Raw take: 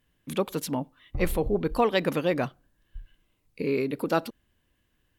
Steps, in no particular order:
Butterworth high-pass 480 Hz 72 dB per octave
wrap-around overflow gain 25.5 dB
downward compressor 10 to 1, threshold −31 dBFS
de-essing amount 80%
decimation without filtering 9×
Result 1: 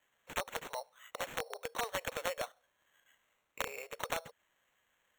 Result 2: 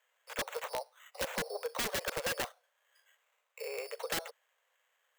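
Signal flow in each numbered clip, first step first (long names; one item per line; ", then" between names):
downward compressor, then de-essing, then wrap-around overflow, then Butterworth high-pass, then decimation without filtering
decimation without filtering, then de-essing, then Butterworth high-pass, then wrap-around overflow, then downward compressor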